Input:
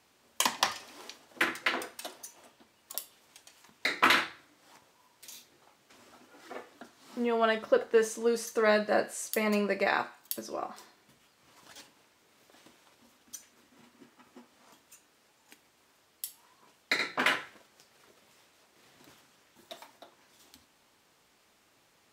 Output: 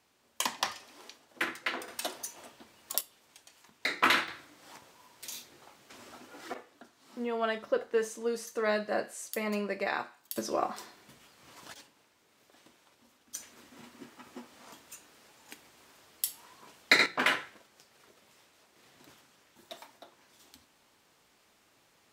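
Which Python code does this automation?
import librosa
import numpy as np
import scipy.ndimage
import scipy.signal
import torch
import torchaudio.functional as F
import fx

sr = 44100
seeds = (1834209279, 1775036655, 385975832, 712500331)

y = fx.gain(x, sr, db=fx.steps((0.0, -4.0), (1.88, 6.0), (3.01, -1.5), (4.28, 6.0), (6.54, -4.5), (10.36, 6.0), (11.74, -2.5), (13.35, 7.0), (17.06, 0.0)))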